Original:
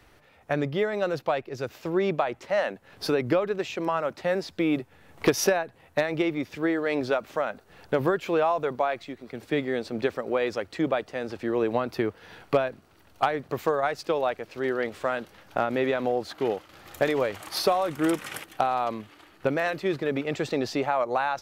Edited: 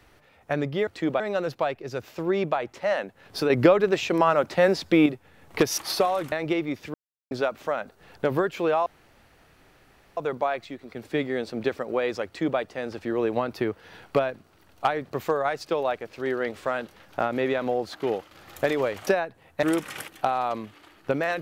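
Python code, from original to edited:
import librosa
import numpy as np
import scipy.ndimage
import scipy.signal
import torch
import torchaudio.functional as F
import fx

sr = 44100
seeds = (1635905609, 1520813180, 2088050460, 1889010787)

y = fx.edit(x, sr, fx.clip_gain(start_s=3.17, length_s=1.56, db=6.5),
    fx.swap(start_s=5.45, length_s=0.56, other_s=17.45, other_length_s=0.54),
    fx.silence(start_s=6.63, length_s=0.37),
    fx.insert_room_tone(at_s=8.55, length_s=1.31),
    fx.duplicate(start_s=10.64, length_s=0.33, to_s=0.87), tone=tone)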